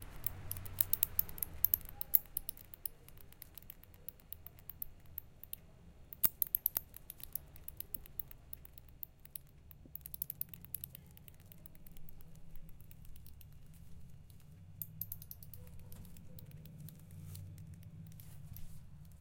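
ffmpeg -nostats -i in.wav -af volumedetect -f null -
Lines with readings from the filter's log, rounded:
mean_volume: -43.9 dB
max_volume: -6.4 dB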